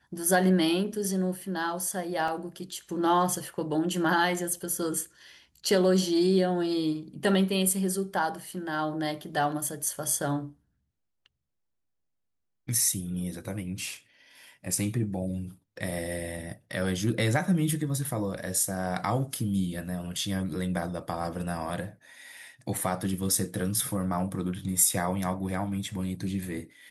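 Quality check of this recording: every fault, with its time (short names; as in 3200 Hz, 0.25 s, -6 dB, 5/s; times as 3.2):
2.28 gap 3 ms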